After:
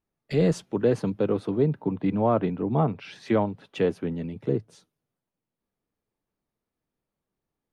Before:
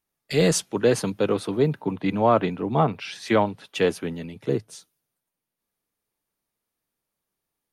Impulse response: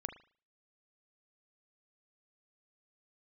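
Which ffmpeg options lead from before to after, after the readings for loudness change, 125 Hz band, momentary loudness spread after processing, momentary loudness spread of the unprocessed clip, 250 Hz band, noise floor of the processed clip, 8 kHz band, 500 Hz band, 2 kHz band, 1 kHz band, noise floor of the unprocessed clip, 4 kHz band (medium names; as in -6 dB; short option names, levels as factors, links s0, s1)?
-2.5 dB, 0.0 dB, 7 LU, 8 LU, -0.5 dB, under -85 dBFS, under -15 dB, -2.5 dB, -8.5 dB, -5.5 dB, -84 dBFS, -11.5 dB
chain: -filter_complex "[0:a]lowpass=f=2700:p=1,tiltshelf=f=680:g=4.5,asplit=2[s0][s1];[s1]acompressor=threshold=0.0398:ratio=6,volume=1[s2];[s0][s2]amix=inputs=2:normalize=0,volume=0.501"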